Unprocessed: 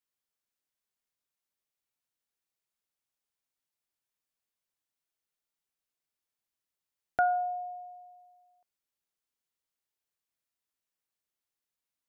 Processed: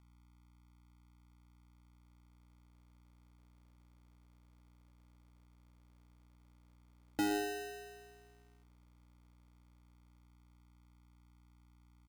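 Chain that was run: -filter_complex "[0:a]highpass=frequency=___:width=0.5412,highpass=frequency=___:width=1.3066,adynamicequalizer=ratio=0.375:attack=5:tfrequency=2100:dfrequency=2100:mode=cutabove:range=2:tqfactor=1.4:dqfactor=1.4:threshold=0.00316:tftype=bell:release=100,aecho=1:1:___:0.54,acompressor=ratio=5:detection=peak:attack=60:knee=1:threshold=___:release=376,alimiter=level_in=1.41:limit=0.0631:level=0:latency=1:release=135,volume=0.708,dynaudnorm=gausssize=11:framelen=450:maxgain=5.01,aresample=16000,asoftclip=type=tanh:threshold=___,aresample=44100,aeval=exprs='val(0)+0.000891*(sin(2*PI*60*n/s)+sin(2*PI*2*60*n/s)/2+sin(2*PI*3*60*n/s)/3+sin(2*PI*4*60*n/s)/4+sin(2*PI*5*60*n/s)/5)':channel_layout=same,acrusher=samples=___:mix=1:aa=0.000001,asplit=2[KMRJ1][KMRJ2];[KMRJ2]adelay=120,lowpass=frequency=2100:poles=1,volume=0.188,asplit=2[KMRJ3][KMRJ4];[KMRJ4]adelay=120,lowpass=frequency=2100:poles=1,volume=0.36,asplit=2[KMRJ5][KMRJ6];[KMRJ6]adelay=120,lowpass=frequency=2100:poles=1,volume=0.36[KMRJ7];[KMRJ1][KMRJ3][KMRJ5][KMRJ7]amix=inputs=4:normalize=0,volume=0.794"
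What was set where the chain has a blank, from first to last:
1300, 1300, 2.9, 0.0158, 0.0473, 39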